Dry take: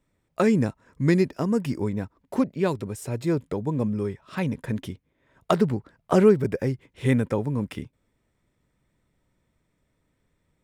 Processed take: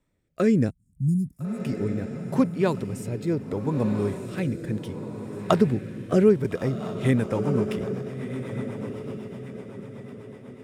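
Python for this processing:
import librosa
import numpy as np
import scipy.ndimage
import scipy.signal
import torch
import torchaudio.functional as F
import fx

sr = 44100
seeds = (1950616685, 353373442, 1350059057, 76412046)

y = fx.ellip_bandstop(x, sr, low_hz=180.0, high_hz=8900.0, order=3, stop_db=50, at=(0.69, 1.58), fade=0.02)
y = fx.echo_diffused(y, sr, ms=1364, feedback_pct=41, wet_db=-8)
y = fx.rotary_switch(y, sr, hz=0.7, then_hz=8.0, switch_at_s=6.36)
y = y * 10.0 ** (1.5 / 20.0)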